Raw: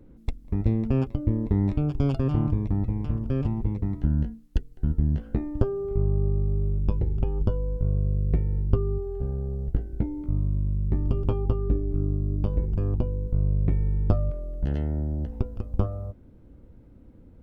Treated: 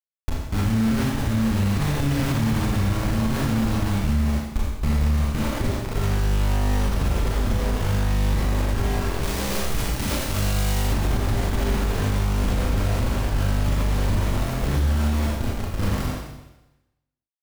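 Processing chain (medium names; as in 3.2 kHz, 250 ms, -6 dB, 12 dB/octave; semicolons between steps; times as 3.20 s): high-order bell 1 kHz -10 dB 2.9 oct; bit crusher 5-bit; 9.23–10.83 s: treble shelf 2.5 kHz +10 dB; Schroeder reverb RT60 1 s, combs from 28 ms, DRR -4.5 dB; peak limiter -13.5 dBFS, peak gain reduction 8 dB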